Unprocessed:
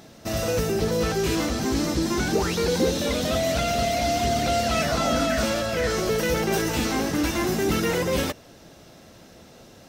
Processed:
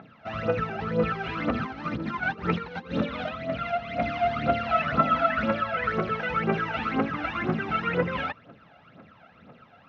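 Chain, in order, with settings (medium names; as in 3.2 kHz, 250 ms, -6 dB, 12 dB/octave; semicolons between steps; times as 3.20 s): 1.40–4.01 s: compressor with a negative ratio -26 dBFS, ratio -0.5; phaser 2 Hz, delay 1.5 ms, feedback 72%; cabinet simulation 140–2800 Hz, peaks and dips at 350 Hz -8 dB, 1.3 kHz +10 dB, 2.5 kHz +3 dB; trim -6 dB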